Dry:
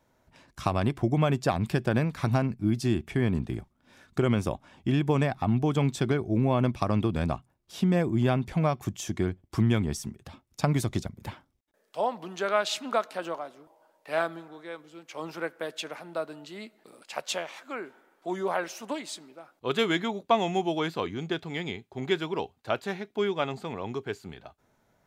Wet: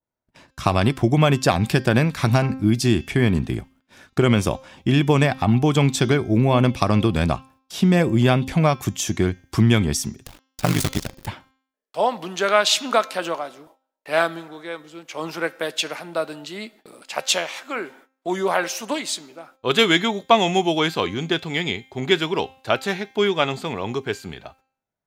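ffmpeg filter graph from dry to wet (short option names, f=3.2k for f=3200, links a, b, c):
-filter_complex "[0:a]asettb=1/sr,asplit=3[a][b][c];[a]atrim=end=10.264[d];[b]atrim=start=10.26:end=11.27,asetpts=PTS-STARTPTS,afade=t=in:d=0.004:c=qsin,afade=t=out:st=1.006:d=0.004:c=qsin,acrusher=bits=6:dc=4:mix=0:aa=0.000001,aeval=exprs='val(0)*sin(2*PI*25*n/s)':c=same[e];[c]atrim=start=11.266[f];[d][e]acrossfade=d=0.004:c1=hsin:c2=qsin[g];[g][f]acrossfade=d=0.004:c1=qsin:c2=hsin,agate=range=-28dB:threshold=-57dB:ratio=16:detection=peak,bandreject=f=264:t=h:w=4,bandreject=f=528:t=h:w=4,bandreject=f=792:t=h:w=4,bandreject=f=1.056k:t=h:w=4,bandreject=f=1.32k:t=h:w=4,bandreject=f=1.584k:t=h:w=4,bandreject=f=1.848k:t=h:w=4,bandreject=f=2.112k:t=h:w=4,bandreject=f=2.376k:t=h:w=4,bandreject=f=2.64k:t=h:w=4,bandreject=f=2.904k:t=h:w=4,bandreject=f=3.168k:t=h:w=4,bandreject=f=3.432k:t=h:w=4,bandreject=f=3.696k:t=h:w=4,bandreject=f=3.96k:t=h:w=4,bandreject=f=4.224k:t=h:w=4,bandreject=f=4.488k:t=h:w=4,bandreject=f=4.752k:t=h:w=4,bandreject=f=5.016k:t=h:w=4,bandreject=f=5.28k:t=h:w=4,bandreject=f=5.544k:t=h:w=4,bandreject=f=5.808k:t=h:w=4,bandreject=f=6.072k:t=h:w=4,bandreject=f=6.336k:t=h:w=4,bandreject=f=6.6k:t=h:w=4,bandreject=f=6.864k:t=h:w=4,bandreject=f=7.128k:t=h:w=4,adynamicequalizer=threshold=0.00794:dfrequency=1800:dqfactor=0.7:tfrequency=1800:tqfactor=0.7:attack=5:release=100:ratio=0.375:range=3:mode=boostabove:tftype=highshelf,volume=7.5dB"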